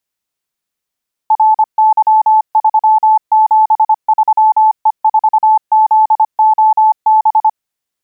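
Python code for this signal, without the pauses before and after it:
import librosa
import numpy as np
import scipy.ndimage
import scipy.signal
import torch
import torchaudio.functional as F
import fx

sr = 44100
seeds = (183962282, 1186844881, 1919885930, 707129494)

y = fx.morse(sr, text='RY373E4ZOB', wpm=25, hz=869.0, level_db=-5.0)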